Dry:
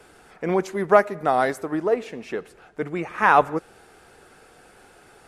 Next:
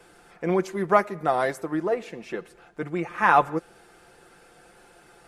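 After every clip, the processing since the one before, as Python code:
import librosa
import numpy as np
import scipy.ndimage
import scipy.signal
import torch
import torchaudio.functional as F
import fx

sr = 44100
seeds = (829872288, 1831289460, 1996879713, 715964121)

y = x + 0.47 * np.pad(x, (int(5.8 * sr / 1000.0), 0))[:len(x)]
y = F.gain(torch.from_numpy(y), -3.0).numpy()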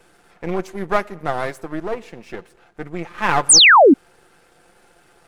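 y = np.where(x < 0.0, 10.0 ** (-12.0 / 20.0) * x, x)
y = fx.spec_paint(y, sr, seeds[0], shape='fall', start_s=3.49, length_s=0.45, low_hz=240.0, high_hz=10000.0, level_db=-11.0)
y = F.gain(torch.from_numpy(y), 2.5).numpy()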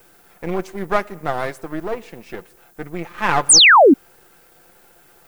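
y = fx.dmg_noise_colour(x, sr, seeds[1], colour='violet', level_db=-55.0)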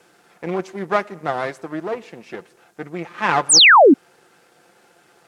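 y = fx.bandpass_edges(x, sr, low_hz=140.0, high_hz=7400.0)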